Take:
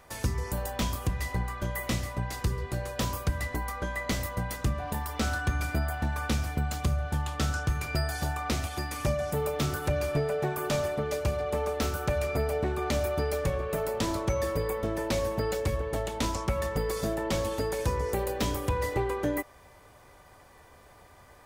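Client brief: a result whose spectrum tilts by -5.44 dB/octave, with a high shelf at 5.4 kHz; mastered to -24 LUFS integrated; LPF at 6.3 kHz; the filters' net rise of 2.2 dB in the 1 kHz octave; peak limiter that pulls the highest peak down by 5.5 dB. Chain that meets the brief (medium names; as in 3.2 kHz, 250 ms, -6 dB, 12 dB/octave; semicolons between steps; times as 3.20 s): low-pass 6.3 kHz; peaking EQ 1 kHz +3 dB; treble shelf 5.4 kHz -8.5 dB; trim +8.5 dB; peak limiter -14.5 dBFS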